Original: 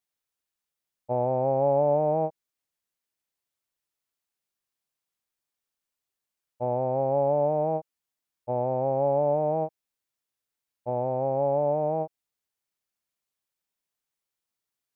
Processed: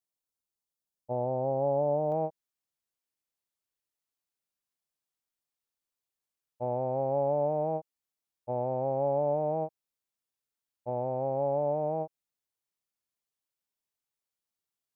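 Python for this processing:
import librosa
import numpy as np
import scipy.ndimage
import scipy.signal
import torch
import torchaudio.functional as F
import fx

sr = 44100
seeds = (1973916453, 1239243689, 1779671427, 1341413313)

y = fx.peak_eq(x, sr, hz=2000.0, db=fx.steps((0.0, -12.5), (2.12, -2.5)), octaves=1.2)
y = F.gain(torch.from_numpy(y), -4.0).numpy()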